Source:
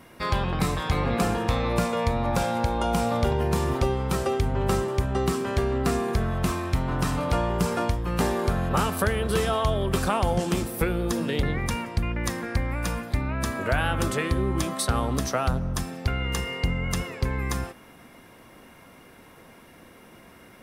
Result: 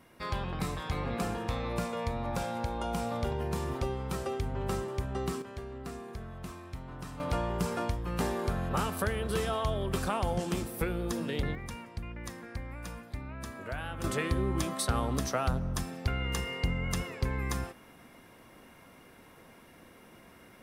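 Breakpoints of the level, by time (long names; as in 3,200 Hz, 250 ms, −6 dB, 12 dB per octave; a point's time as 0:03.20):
−9 dB
from 0:05.42 −17 dB
from 0:07.20 −7 dB
from 0:11.55 −13.5 dB
from 0:14.04 −5 dB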